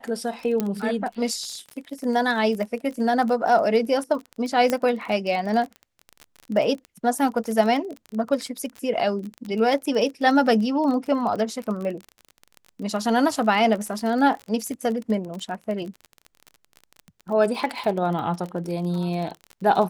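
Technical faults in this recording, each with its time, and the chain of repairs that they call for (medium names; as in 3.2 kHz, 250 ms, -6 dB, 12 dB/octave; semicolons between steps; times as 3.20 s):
crackle 29 per s -29 dBFS
0.60 s: pop -11 dBFS
4.70 s: pop -9 dBFS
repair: de-click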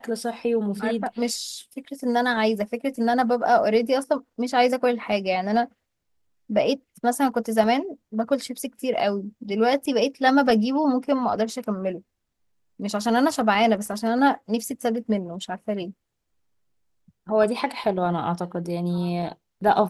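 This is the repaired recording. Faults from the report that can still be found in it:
nothing left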